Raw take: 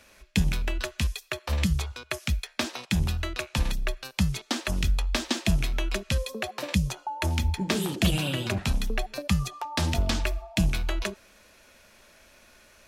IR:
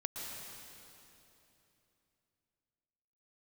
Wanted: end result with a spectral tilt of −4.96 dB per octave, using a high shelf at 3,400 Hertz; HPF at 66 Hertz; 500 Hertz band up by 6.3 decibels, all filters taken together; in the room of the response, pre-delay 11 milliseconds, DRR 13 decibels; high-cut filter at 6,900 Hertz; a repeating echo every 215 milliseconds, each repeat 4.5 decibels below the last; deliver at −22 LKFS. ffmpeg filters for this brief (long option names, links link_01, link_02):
-filter_complex "[0:a]highpass=66,lowpass=6900,equalizer=frequency=500:width_type=o:gain=8.5,highshelf=frequency=3400:gain=-4.5,aecho=1:1:215|430|645|860|1075|1290|1505|1720|1935:0.596|0.357|0.214|0.129|0.0772|0.0463|0.0278|0.0167|0.01,asplit=2[link_01][link_02];[1:a]atrim=start_sample=2205,adelay=11[link_03];[link_02][link_03]afir=irnorm=-1:irlink=0,volume=-14dB[link_04];[link_01][link_04]amix=inputs=2:normalize=0,volume=5.5dB"